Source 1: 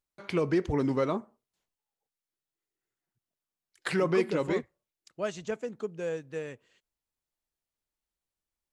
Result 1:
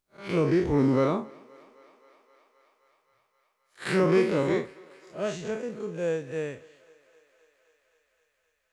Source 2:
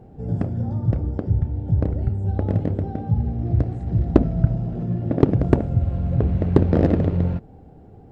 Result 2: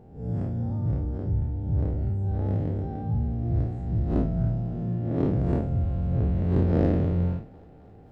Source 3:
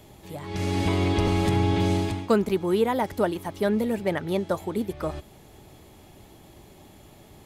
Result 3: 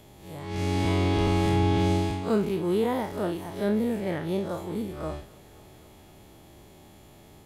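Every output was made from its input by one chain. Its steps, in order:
spectral blur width 98 ms; thinning echo 262 ms, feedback 82%, high-pass 360 Hz, level -23.5 dB; normalise loudness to -27 LUFS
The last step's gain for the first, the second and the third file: +6.5 dB, -3.0 dB, 0.0 dB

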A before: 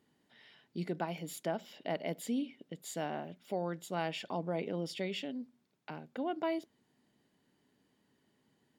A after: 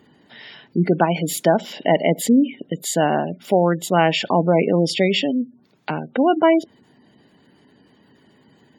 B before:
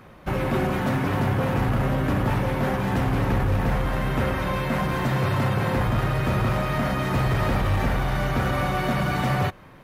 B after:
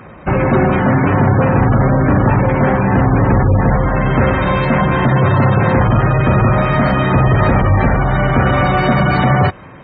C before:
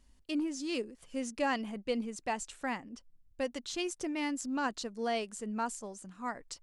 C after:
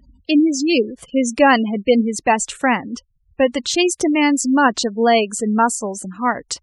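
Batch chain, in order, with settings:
spectral gate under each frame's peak -25 dB strong; high-pass 47 Hz; peak normalisation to -1.5 dBFS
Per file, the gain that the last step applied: +19.5 dB, +11.5 dB, +19.0 dB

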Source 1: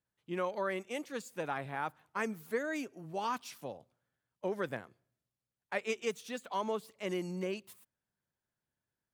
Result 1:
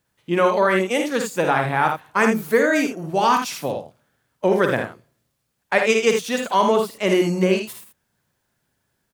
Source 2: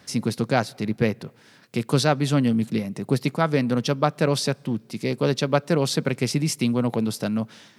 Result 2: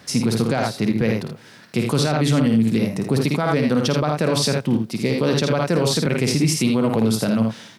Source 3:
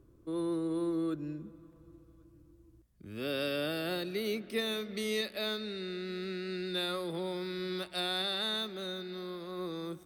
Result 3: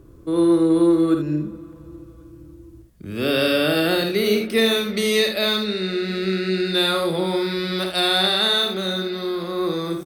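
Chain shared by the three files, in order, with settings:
early reflections 53 ms -6.5 dB, 80 ms -7.5 dB; peak limiter -15.5 dBFS; normalise loudness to -20 LUFS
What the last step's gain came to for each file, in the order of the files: +17.0 dB, +5.5 dB, +13.5 dB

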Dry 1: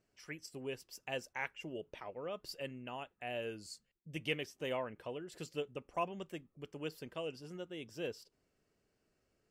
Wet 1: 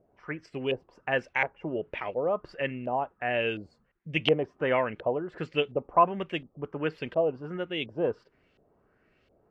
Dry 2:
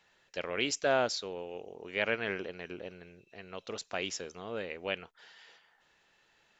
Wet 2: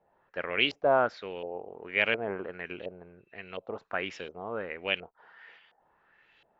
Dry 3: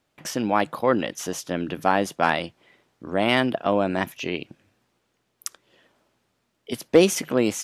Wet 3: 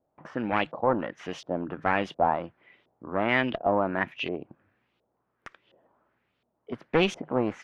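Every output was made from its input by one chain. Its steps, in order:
one-sided clip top -21.5 dBFS; LFO low-pass saw up 1.4 Hz 600–3500 Hz; peak normalisation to -9 dBFS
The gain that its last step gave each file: +11.0 dB, +1.0 dB, -5.5 dB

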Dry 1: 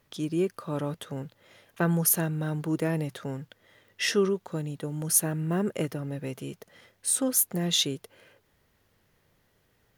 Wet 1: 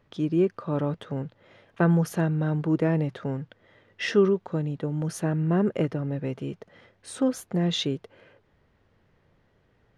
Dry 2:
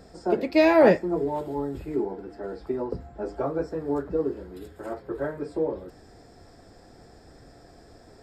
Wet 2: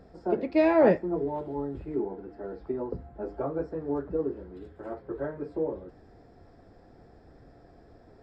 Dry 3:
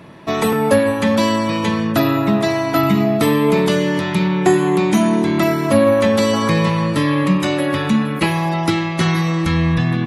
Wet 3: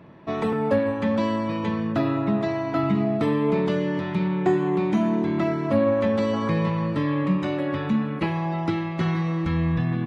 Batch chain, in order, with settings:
tape spacing loss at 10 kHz 25 dB; peak normalisation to -9 dBFS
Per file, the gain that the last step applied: +5.0 dB, -2.0 dB, -6.0 dB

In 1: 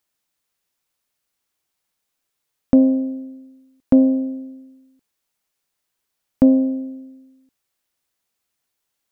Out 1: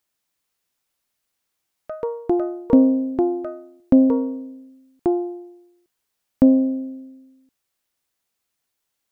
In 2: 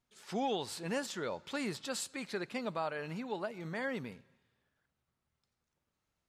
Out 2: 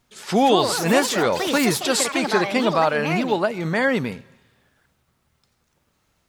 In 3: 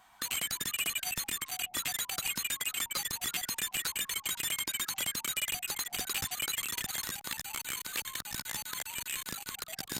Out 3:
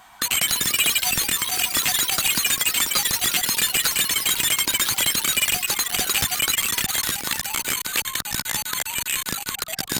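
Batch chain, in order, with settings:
ever faster or slower copies 249 ms, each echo +5 st, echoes 3, each echo -6 dB; normalise loudness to -20 LUFS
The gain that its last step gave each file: -0.5 dB, +17.5 dB, +12.5 dB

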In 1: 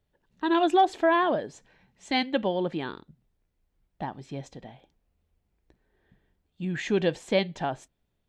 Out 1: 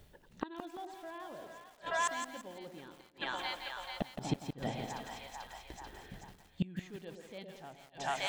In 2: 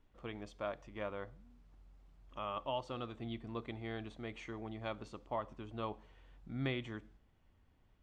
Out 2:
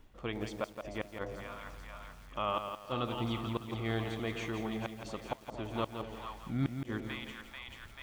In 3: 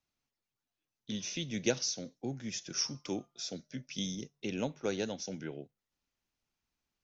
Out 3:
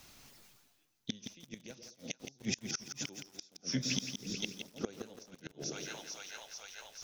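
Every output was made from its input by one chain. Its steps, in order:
treble shelf 4.2 kHz +4.5 dB; two-band feedback delay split 810 Hz, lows 114 ms, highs 439 ms, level -9 dB; inverted gate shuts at -28 dBFS, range -35 dB; reverse; upward compressor, threshold -47 dBFS; reverse; bit-crushed delay 169 ms, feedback 35%, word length 10-bit, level -7 dB; trim +7 dB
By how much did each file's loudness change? -14.0 LU, +5.0 LU, -4.0 LU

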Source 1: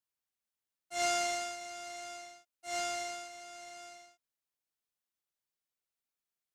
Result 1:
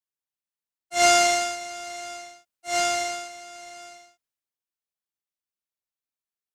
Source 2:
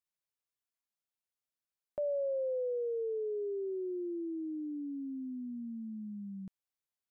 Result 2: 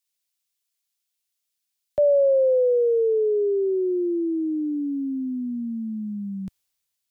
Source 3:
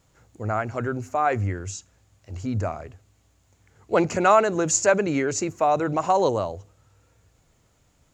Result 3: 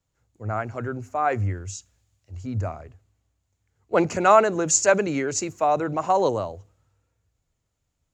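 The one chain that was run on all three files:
three bands expanded up and down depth 40%; normalise loudness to -23 LUFS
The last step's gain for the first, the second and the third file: +11.5 dB, +15.0 dB, -1.5 dB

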